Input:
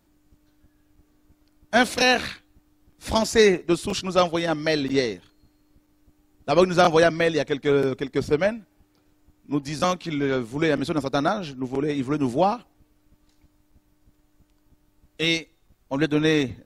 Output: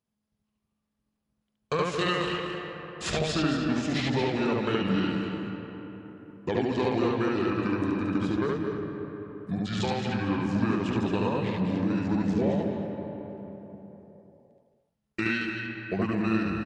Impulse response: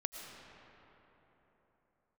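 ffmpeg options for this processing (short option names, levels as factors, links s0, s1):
-filter_complex "[0:a]acompressor=threshold=0.0178:ratio=5,highpass=110,agate=range=0.0501:threshold=0.00224:ratio=16:detection=peak,asetrate=31183,aresample=44100,atempo=1.41421,aecho=1:1:222:0.376,asplit=2[s0][s1];[1:a]atrim=start_sample=2205,lowpass=5800,adelay=72[s2];[s1][s2]afir=irnorm=-1:irlink=0,volume=1.19[s3];[s0][s3]amix=inputs=2:normalize=0,volume=2"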